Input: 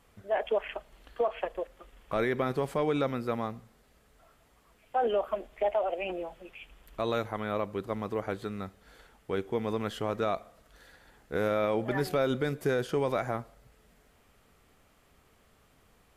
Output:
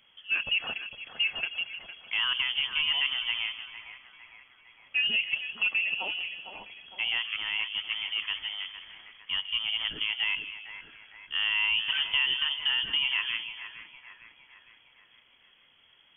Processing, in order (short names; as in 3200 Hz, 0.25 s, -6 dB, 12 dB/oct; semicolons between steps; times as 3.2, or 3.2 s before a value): split-band echo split 810 Hz, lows 0.154 s, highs 0.457 s, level -9.5 dB; inverted band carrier 3300 Hz